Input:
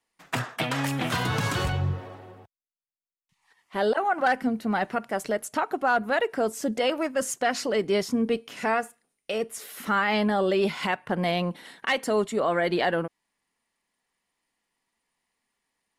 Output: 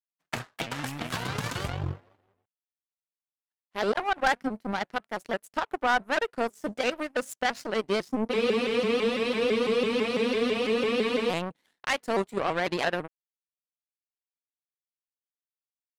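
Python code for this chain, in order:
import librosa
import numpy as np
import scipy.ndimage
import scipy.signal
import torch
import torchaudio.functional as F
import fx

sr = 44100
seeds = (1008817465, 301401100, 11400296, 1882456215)

y = fx.power_curve(x, sr, exponent=2.0)
y = fx.spec_freeze(y, sr, seeds[0], at_s=8.33, hold_s=2.97)
y = fx.vibrato_shape(y, sr, shape='saw_up', rate_hz=6.0, depth_cents=160.0)
y = y * 10.0 ** (3.0 / 20.0)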